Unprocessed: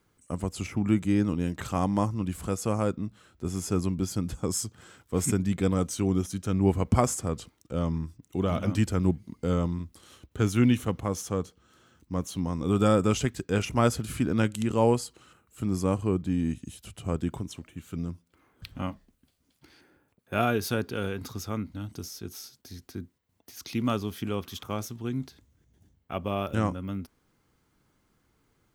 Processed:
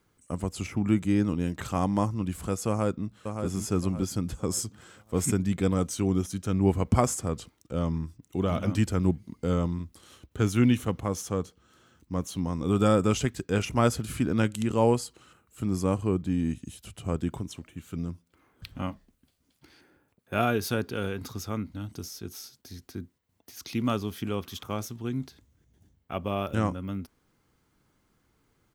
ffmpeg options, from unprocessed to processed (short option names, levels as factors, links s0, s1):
-filter_complex "[0:a]asplit=2[s0][s1];[s1]afade=t=in:st=2.68:d=0.01,afade=t=out:st=3.45:d=0.01,aecho=0:1:570|1140|1710|2280:0.473151|0.165603|0.057961|0.0202864[s2];[s0][s2]amix=inputs=2:normalize=0"